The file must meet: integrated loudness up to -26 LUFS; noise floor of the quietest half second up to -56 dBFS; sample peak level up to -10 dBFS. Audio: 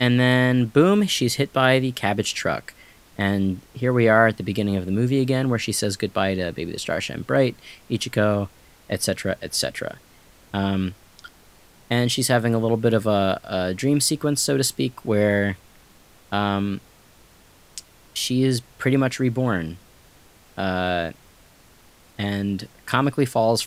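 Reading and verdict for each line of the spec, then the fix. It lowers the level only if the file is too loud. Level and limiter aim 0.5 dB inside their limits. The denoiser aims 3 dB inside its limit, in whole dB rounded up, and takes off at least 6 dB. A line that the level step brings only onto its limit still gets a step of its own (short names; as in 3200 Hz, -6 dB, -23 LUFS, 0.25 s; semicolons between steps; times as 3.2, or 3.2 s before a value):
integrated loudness -22.0 LUFS: fail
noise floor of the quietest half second -52 dBFS: fail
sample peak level -2.0 dBFS: fail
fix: gain -4.5 dB; limiter -10.5 dBFS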